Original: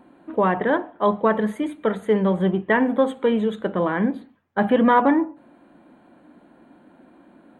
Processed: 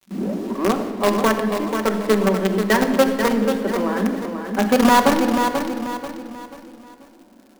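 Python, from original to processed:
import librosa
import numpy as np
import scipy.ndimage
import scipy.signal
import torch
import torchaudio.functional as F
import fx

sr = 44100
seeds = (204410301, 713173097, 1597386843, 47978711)

p1 = fx.tape_start_head(x, sr, length_s=0.96)
p2 = scipy.signal.sosfilt(scipy.signal.butter(16, 190.0, 'highpass', fs=sr, output='sos'), p1)
p3 = fx.high_shelf(p2, sr, hz=2100.0, db=-6.5)
p4 = fx.quant_companded(p3, sr, bits=2)
p5 = p3 + (p4 * librosa.db_to_amplitude(-8.0))
p6 = fx.dmg_crackle(p5, sr, seeds[0], per_s=120.0, level_db=-37.0)
p7 = p6 + fx.echo_feedback(p6, sr, ms=487, feedback_pct=37, wet_db=-7.0, dry=0)
p8 = fx.room_shoebox(p7, sr, seeds[1], volume_m3=3000.0, walls='mixed', distance_m=1.1)
y = p8 * librosa.db_to_amplitude(-3.0)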